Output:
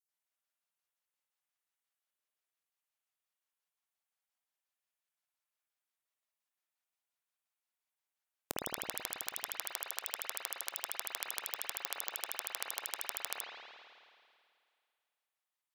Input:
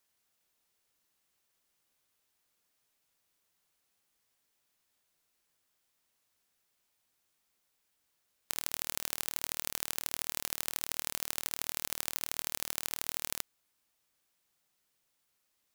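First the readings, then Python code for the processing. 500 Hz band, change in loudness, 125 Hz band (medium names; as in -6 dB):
0.0 dB, -4.0 dB, -9.5 dB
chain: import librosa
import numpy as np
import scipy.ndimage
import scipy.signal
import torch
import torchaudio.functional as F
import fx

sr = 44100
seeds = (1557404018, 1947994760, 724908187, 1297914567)

y = fx.peak_eq(x, sr, hz=460.0, db=-5.5, octaves=0.77)
y = fx.cheby_harmonics(y, sr, harmonics=(3, 4, 6), levels_db=(-8, -37, -42), full_scale_db=-4.0)
y = fx.filter_lfo_highpass(y, sr, shape='square', hz=5.7, low_hz=590.0, high_hz=7600.0, q=0.96)
y = fx.highpass(y, sr, hz=230.0, slope=6)
y = fx.vibrato(y, sr, rate_hz=4.8, depth_cents=51.0)
y = fx.rev_spring(y, sr, rt60_s=2.3, pass_ms=(54,), chirp_ms=70, drr_db=-4.0)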